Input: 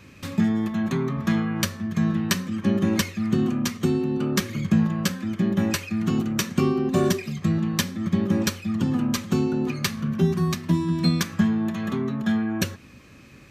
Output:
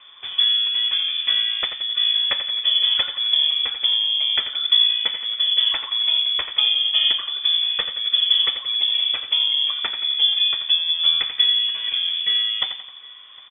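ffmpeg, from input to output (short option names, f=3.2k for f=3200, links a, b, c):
-filter_complex "[0:a]asplit=2[a][b];[b]aecho=0:1:87|174|261|348|435:0.316|0.152|0.0729|0.035|0.0168[c];[a][c]amix=inputs=2:normalize=0,lowpass=f=3.1k:t=q:w=0.5098,lowpass=f=3.1k:t=q:w=0.6013,lowpass=f=3.1k:t=q:w=0.9,lowpass=f=3.1k:t=q:w=2.563,afreqshift=-3600,aemphasis=mode=production:type=50fm,asplit=2[d][e];[e]aecho=0:1:759:0.0668[f];[d][f]amix=inputs=2:normalize=0,volume=-1dB"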